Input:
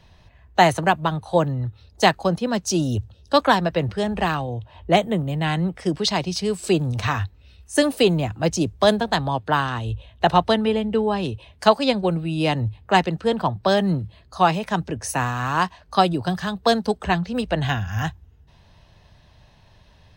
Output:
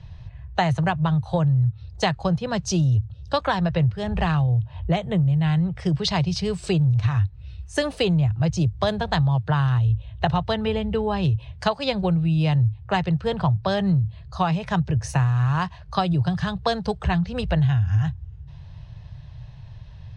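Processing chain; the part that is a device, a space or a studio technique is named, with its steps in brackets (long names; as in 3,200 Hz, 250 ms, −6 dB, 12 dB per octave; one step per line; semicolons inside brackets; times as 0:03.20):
jukebox (low-pass filter 5,800 Hz 12 dB per octave; low shelf with overshoot 180 Hz +10.5 dB, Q 3; downward compressor 6 to 1, threshold −18 dBFS, peak gain reduction 13.5 dB)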